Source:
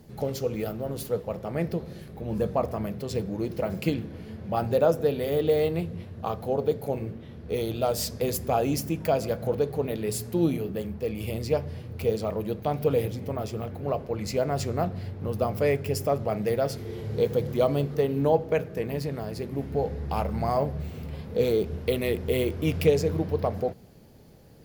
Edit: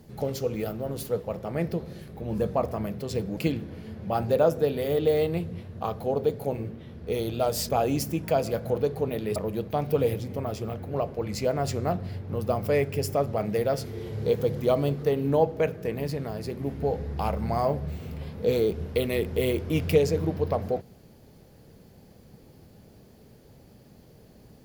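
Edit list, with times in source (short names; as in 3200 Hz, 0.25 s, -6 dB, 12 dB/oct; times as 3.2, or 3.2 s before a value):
3.37–3.79 cut
8.11–8.46 cut
10.13–12.28 cut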